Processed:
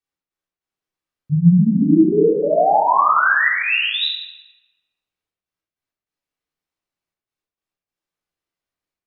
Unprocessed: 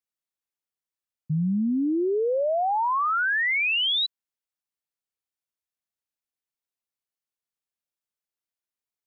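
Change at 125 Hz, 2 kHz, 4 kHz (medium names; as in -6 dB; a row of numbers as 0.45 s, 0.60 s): +13.5 dB, +7.0 dB, +2.0 dB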